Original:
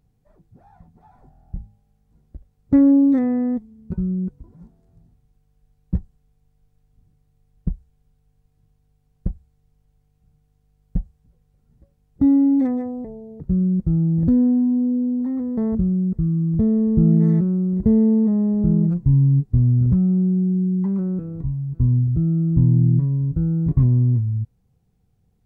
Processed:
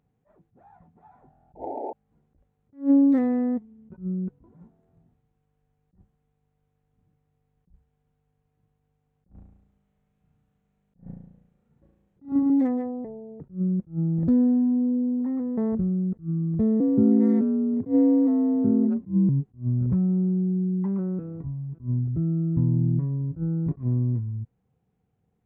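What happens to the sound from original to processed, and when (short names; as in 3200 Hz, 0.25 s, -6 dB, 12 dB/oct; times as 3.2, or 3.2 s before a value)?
1.55–1.93 painted sound noise 230–910 Hz -31 dBFS
9.28–12.5 flutter echo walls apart 6 m, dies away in 0.86 s
16.8–19.29 frequency shift +54 Hz
whole clip: Wiener smoothing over 9 samples; HPF 270 Hz 6 dB/oct; attack slew limiter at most 240 dB/s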